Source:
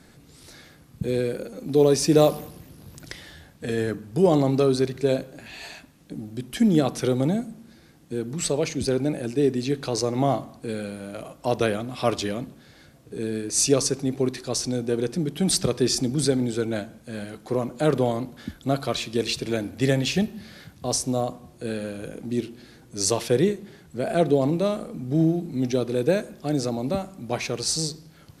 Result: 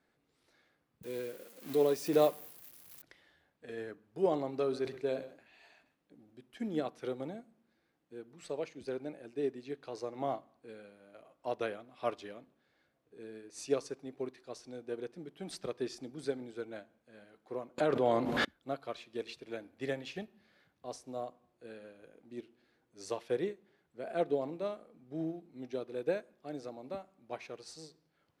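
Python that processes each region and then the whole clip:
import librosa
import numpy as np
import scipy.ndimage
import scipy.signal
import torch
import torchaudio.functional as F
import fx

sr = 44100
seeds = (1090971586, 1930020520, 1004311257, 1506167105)

y = fx.chain(x, sr, fx.crossing_spikes(level_db=-21.5),
    fx.high_shelf(hz=11000.0, db=9.0),
    fx.pre_swell(db_per_s=72.0), at=(1.03, 3.02))
y = fx.chain(y, sr, fx.echo_single(ms=127, db=-17.5),
    fx.sustainer(db_per_s=73.0), at=(4.53, 6.38))
y = fx.chain(y, sr, fx.high_shelf(hz=12000.0, db=-11.5),
    fx.env_flatten(amount_pct=100), at=(17.78, 18.45))
y = fx.bass_treble(y, sr, bass_db=-13, treble_db=-12)
y = fx.upward_expand(y, sr, threshold_db=-39.0, expansion=1.5)
y = y * 10.0 ** (-7.5 / 20.0)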